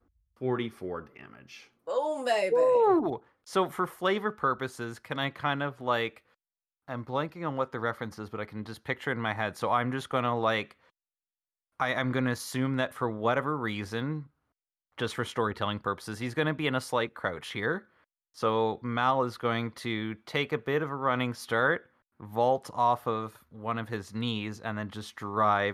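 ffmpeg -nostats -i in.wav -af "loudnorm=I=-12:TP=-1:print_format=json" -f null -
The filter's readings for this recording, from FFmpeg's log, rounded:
"input_i" : "-30.4",
"input_tp" : "-12.9",
"input_lra" : "3.9",
"input_thresh" : "-40.7",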